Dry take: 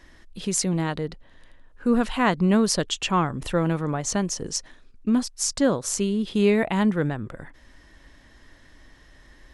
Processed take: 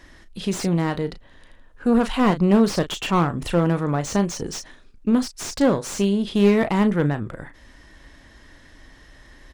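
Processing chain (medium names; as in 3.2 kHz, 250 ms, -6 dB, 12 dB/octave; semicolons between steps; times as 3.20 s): single-diode clipper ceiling -18 dBFS; doubling 35 ms -12 dB; slew-rate limiter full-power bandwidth 110 Hz; trim +4 dB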